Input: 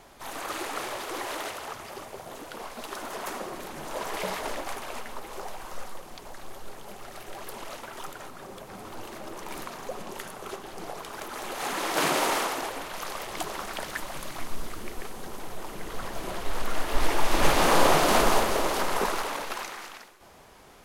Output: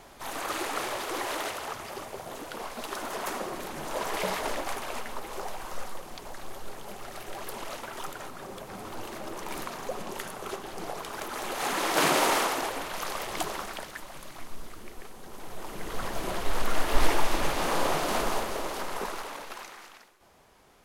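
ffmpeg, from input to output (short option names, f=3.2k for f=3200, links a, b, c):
-af "volume=10.5dB,afade=t=out:st=13.44:d=0.48:silence=0.375837,afade=t=in:st=15.24:d=0.8:silence=0.354813,afade=t=out:st=17.04:d=0.42:silence=0.354813"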